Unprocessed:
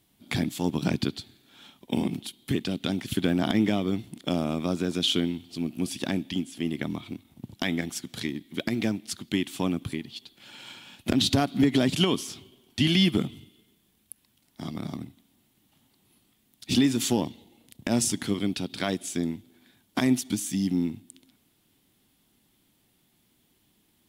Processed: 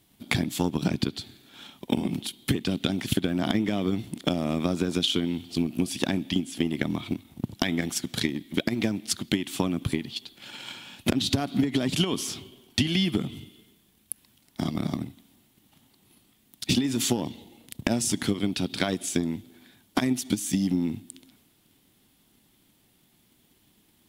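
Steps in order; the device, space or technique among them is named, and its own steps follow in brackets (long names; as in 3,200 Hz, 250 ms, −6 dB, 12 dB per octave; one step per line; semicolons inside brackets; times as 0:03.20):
drum-bus smash (transient designer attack +8 dB, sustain +3 dB; downward compressor 10 to 1, threshold −23 dBFS, peak gain reduction 12.5 dB; soft clipping −10 dBFS, distortion −27 dB)
level +3 dB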